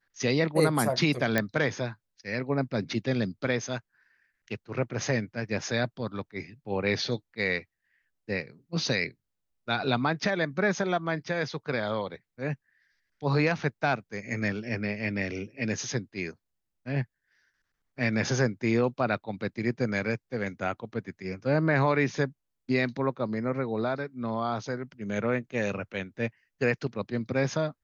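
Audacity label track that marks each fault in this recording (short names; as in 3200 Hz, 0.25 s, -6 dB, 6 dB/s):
1.380000	1.380000	pop -10 dBFS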